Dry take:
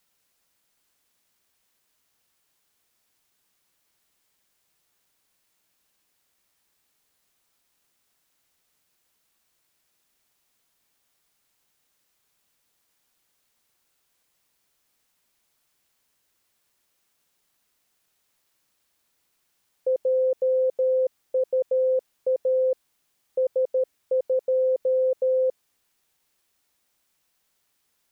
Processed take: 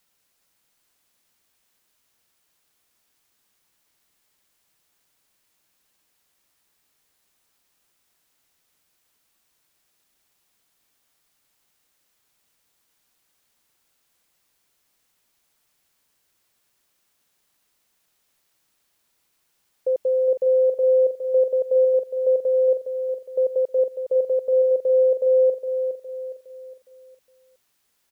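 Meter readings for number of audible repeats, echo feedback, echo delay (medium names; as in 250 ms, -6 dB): 4, 41%, 412 ms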